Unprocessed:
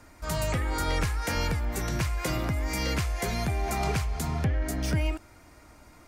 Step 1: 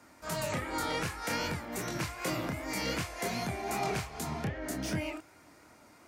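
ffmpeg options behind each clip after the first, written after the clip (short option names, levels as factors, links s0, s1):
-af "aeval=exprs='0.126*(cos(1*acos(clip(val(0)/0.126,-1,1)))-cos(1*PI/2))+0.00126*(cos(5*acos(clip(val(0)/0.126,-1,1)))-cos(5*PI/2))':c=same,flanger=delay=22.5:depth=7.6:speed=2.6,highpass=150"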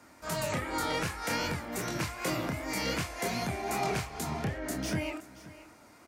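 -af "aecho=1:1:525:0.126,volume=1.19"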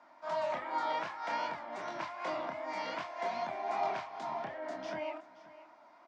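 -af "highpass=360,equalizer=f=450:t=q:w=4:g=-10,equalizer=f=650:t=q:w=4:g=10,equalizer=f=970:t=q:w=4:g=10,equalizer=f=2600:t=q:w=4:g=-4,equalizer=f=4300:t=q:w=4:g=-4,lowpass=f=4500:w=0.5412,lowpass=f=4500:w=1.3066,volume=0.501"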